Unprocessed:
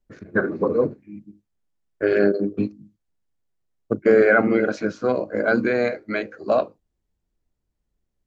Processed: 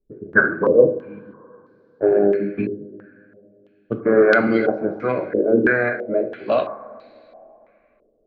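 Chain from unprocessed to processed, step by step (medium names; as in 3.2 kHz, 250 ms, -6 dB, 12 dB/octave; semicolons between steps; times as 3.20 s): 2.18–4.12 s: dynamic bell 910 Hz, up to -6 dB, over -33 dBFS, Q 1; two-slope reverb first 0.52 s, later 3.3 s, from -18 dB, DRR 5.5 dB; step-sequenced low-pass 3 Hz 410–4300 Hz; trim -1 dB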